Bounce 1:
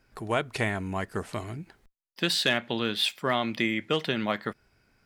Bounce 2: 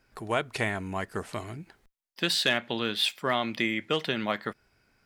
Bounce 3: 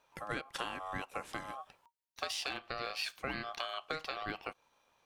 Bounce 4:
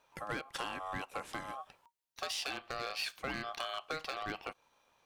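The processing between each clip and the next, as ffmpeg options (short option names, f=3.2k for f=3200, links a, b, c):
-af "lowshelf=f=320:g=-3.5"
-af "acompressor=threshold=-30dB:ratio=6,aeval=exprs='val(0)*sin(2*PI*940*n/s)':c=same,volume=-2dB"
-af "asoftclip=type=hard:threshold=-30.5dB,volume=1dB"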